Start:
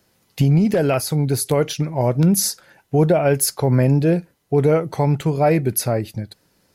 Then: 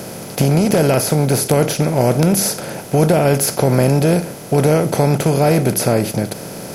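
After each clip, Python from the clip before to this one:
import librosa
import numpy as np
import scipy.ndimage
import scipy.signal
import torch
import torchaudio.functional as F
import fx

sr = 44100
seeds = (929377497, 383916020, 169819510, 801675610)

y = fx.bin_compress(x, sr, power=0.4)
y = y * librosa.db_to_amplitude(-2.0)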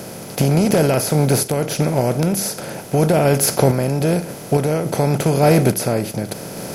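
y = fx.tremolo_random(x, sr, seeds[0], hz=3.5, depth_pct=55)
y = y * librosa.db_to_amplitude(1.0)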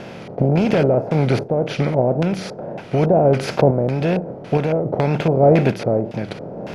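y = fx.wow_flutter(x, sr, seeds[1], rate_hz=2.1, depth_cents=85.0)
y = fx.filter_lfo_lowpass(y, sr, shape='square', hz=1.8, low_hz=660.0, high_hz=2900.0, q=1.5)
y = y * librosa.db_to_amplitude(-1.5)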